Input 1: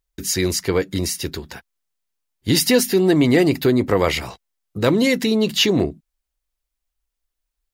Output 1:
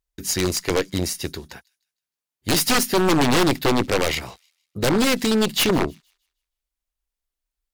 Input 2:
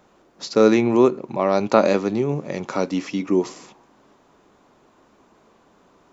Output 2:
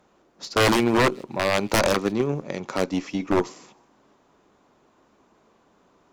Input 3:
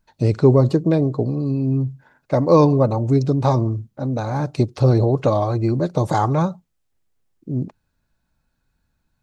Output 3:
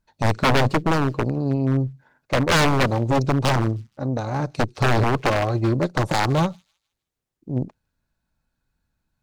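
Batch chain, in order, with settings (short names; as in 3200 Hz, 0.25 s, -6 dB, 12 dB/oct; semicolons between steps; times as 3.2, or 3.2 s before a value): added harmonics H 2 -13 dB, 5 -39 dB, 7 -20 dB, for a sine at -1 dBFS; wavefolder -16 dBFS; thin delay 0.156 s, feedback 32%, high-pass 3400 Hz, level -22.5 dB; gain +4.5 dB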